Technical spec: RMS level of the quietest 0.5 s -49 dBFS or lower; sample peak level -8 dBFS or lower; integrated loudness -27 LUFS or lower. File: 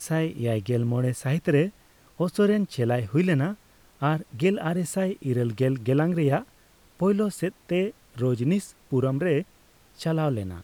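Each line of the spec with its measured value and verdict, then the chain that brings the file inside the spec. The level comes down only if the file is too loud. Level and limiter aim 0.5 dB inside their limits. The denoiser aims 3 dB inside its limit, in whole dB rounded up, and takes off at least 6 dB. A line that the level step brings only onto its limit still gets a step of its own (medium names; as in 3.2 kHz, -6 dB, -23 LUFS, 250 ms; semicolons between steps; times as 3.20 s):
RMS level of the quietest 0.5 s -57 dBFS: pass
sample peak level -11.0 dBFS: pass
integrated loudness -26.0 LUFS: fail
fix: trim -1.5 dB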